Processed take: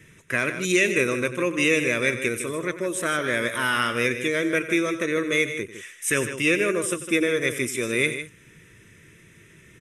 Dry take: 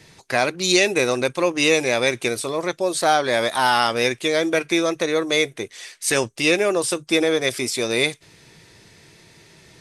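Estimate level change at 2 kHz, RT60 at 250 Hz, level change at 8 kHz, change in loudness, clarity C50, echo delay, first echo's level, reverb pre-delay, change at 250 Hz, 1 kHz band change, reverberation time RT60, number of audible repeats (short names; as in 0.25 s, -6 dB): -0.5 dB, none, -4.5 dB, -3.5 dB, none, 92 ms, -14.5 dB, none, -1.5 dB, -9.0 dB, none, 2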